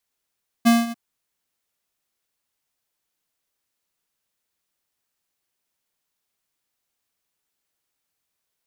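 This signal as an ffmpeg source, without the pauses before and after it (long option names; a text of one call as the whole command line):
ffmpeg -f lavfi -i "aevalsrc='0.224*(2*lt(mod(233*t,1),0.5)-1)':duration=0.294:sample_rate=44100,afade=type=in:duration=0.021,afade=type=out:start_time=0.021:duration=0.19:silence=0.15,afade=type=out:start_time=0.27:duration=0.024" out.wav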